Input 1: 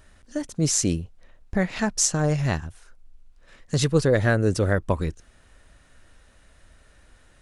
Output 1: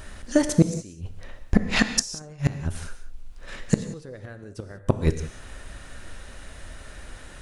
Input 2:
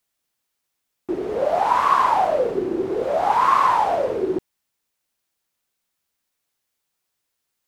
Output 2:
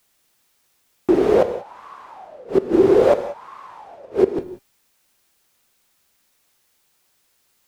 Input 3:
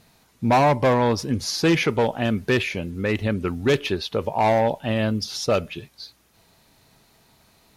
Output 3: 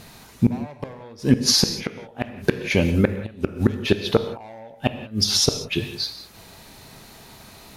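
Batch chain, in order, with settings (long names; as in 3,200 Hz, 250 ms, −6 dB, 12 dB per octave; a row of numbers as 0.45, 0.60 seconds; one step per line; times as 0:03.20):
dynamic equaliser 1,000 Hz, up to −4 dB, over −30 dBFS, Q 5.4
in parallel at 0 dB: downward compressor 4 to 1, threshold −29 dBFS
on the sum: soft clipping −1.5 dBFS
tuned comb filter 400 Hz, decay 0.36 s, harmonics all, mix 40%
gate with flip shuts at −15 dBFS, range −30 dB
reverb whose tail is shaped and stops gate 210 ms flat, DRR 9 dB
normalise the peak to −3 dBFS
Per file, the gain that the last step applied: +11.0, +10.5, +10.5 decibels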